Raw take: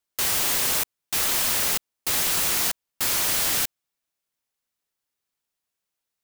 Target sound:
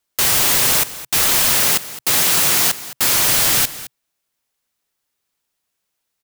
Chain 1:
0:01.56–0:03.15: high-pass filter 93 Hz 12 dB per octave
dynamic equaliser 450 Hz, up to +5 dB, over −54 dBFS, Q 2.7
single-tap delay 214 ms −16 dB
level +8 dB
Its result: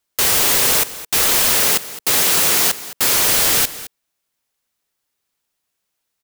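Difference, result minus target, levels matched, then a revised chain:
500 Hz band +3.0 dB
0:01.56–0:03.15: high-pass filter 93 Hz 12 dB per octave
dynamic equaliser 130 Hz, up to +5 dB, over −54 dBFS, Q 2.7
single-tap delay 214 ms −16 dB
level +8 dB

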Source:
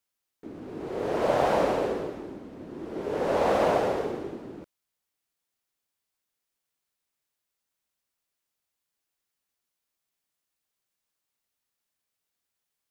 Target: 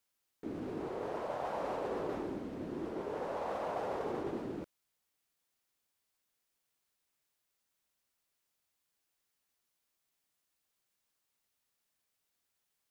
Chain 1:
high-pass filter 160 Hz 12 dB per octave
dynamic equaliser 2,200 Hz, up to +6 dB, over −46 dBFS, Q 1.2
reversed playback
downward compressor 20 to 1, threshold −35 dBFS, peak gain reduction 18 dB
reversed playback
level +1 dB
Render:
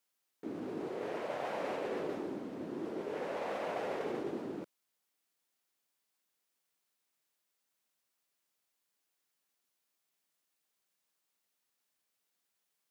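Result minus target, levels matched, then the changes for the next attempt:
2,000 Hz band +3.5 dB; 125 Hz band −3.0 dB
change: dynamic equaliser 990 Hz, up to +6 dB, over −46 dBFS, Q 1.2
remove: high-pass filter 160 Hz 12 dB per octave

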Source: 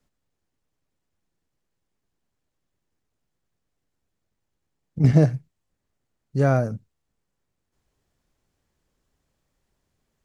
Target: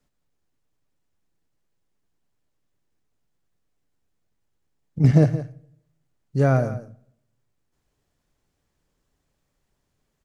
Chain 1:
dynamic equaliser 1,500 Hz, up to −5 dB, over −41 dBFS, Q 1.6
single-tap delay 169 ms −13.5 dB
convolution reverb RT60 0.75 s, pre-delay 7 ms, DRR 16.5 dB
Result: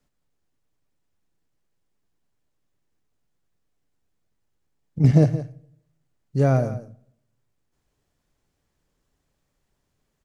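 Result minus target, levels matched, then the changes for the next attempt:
2,000 Hz band −4.0 dB
change: dynamic equaliser 5,600 Hz, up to −5 dB, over −41 dBFS, Q 1.6

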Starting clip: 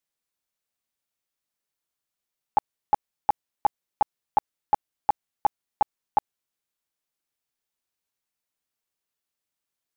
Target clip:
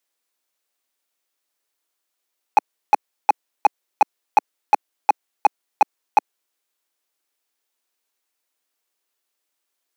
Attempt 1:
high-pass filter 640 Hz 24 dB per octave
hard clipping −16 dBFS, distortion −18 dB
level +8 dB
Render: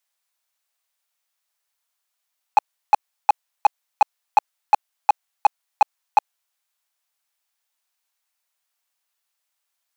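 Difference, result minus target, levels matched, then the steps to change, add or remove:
250 Hz band −13.0 dB
change: high-pass filter 280 Hz 24 dB per octave

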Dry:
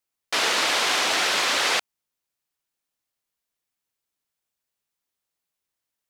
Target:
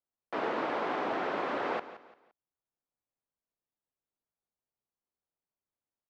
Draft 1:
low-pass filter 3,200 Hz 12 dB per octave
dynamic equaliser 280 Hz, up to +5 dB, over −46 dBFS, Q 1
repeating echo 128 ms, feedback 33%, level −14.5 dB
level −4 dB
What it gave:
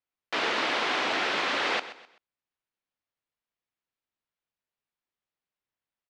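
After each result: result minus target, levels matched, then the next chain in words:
4,000 Hz band +11.5 dB; echo 44 ms early
low-pass filter 1,000 Hz 12 dB per octave
dynamic equaliser 280 Hz, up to +5 dB, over −46 dBFS, Q 1
repeating echo 128 ms, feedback 33%, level −14.5 dB
level −4 dB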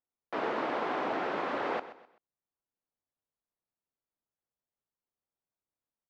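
echo 44 ms early
low-pass filter 1,000 Hz 12 dB per octave
dynamic equaliser 280 Hz, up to +5 dB, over −46 dBFS, Q 1
repeating echo 172 ms, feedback 33%, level −14.5 dB
level −4 dB

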